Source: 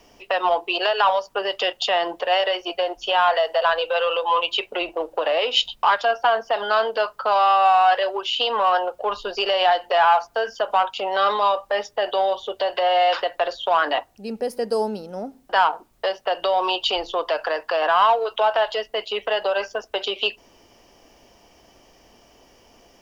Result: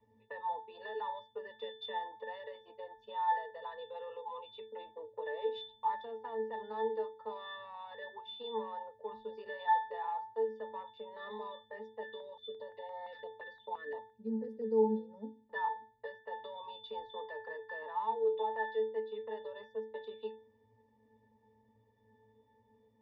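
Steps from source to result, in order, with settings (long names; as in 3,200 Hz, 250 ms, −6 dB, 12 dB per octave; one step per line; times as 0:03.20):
high-shelf EQ 6,300 Hz −6 dB
resonances in every octave A, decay 0.41 s
0:12.03–0:14.64: notch on a step sequencer 5.8 Hz 730–2,700 Hz
level +2.5 dB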